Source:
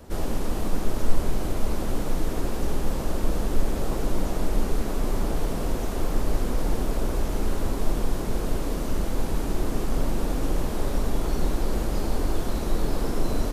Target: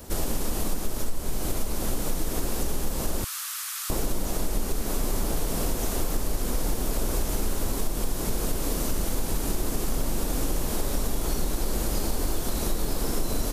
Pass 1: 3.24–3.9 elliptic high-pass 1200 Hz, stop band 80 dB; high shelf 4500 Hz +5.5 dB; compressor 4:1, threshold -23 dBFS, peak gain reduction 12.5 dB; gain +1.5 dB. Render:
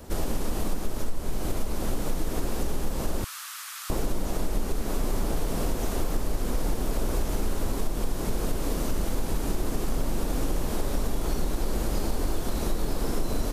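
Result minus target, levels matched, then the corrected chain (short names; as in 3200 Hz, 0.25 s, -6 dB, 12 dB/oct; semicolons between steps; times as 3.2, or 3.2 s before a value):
8000 Hz band -4.5 dB
3.24–3.9 elliptic high-pass 1200 Hz, stop band 80 dB; high shelf 4500 Hz +14 dB; compressor 4:1, threshold -23 dBFS, peak gain reduction 12.5 dB; gain +1.5 dB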